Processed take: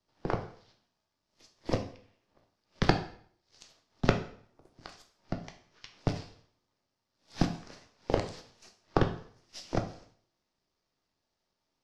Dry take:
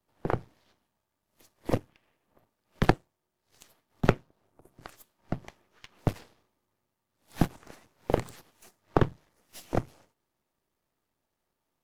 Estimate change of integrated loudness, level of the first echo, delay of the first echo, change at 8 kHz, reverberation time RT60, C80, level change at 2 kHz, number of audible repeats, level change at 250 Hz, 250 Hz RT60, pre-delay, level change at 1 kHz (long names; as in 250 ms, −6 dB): −2.0 dB, no echo audible, no echo audible, 0.0 dB, 0.55 s, 14.5 dB, −1.0 dB, no echo audible, −2.0 dB, 0.55 s, 6 ms, −1.5 dB